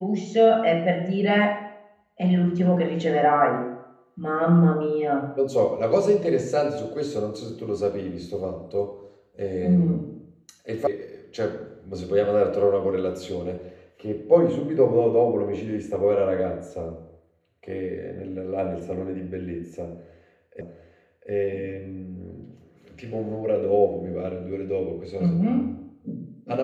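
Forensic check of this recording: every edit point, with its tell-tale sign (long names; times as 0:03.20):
0:10.87: cut off before it has died away
0:20.61: the same again, the last 0.7 s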